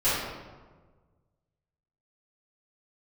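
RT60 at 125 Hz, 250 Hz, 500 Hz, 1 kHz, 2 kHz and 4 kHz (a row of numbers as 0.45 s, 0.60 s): 2.1 s, 1.6 s, 1.5 s, 1.3 s, 1.0 s, 0.80 s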